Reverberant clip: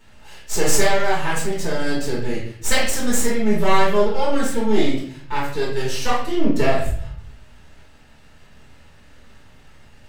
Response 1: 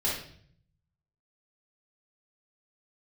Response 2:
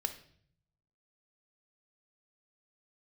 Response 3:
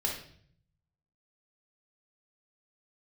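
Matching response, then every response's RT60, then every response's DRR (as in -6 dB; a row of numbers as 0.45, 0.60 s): 1; 0.55, 0.55, 0.55 s; -7.5, 8.0, -1.5 dB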